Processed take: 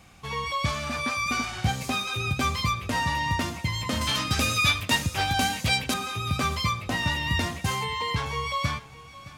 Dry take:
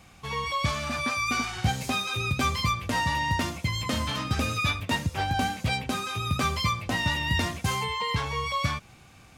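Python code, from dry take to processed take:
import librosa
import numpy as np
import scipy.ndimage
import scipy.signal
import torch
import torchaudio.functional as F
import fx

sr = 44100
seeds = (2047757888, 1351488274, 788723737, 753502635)

y = fx.high_shelf(x, sr, hz=2100.0, db=9.5, at=(4.01, 5.94))
y = y + 10.0 ** (-17.5 / 20.0) * np.pad(y, (int(616 * sr / 1000.0), 0))[:len(y)]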